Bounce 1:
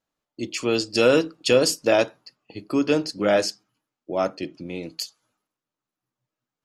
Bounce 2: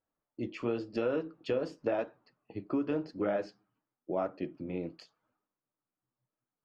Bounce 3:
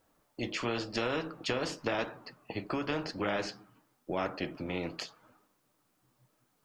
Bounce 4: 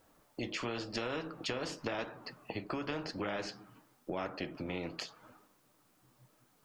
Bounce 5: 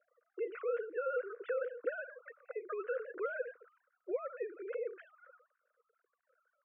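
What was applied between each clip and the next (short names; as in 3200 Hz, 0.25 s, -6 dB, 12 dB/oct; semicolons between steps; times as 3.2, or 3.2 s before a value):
flange 0.93 Hz, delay 2.1 ms, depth 9.9 ms, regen -52%; compressor 5:1, threshold -28 dBFS, peak gain reduction 11 dB; LPF 1600 Hz 12 dB/oct
spectral compressor 2:1; gain +1 dB
compressor 2:1, threshold -46 dBFS, peak gain reduction 10 dB; gain +4.5 dB
sine-wave speech; double band-pass 840 Hz, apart 1.6 oct; air absorption 400 m; gain +7.5 dB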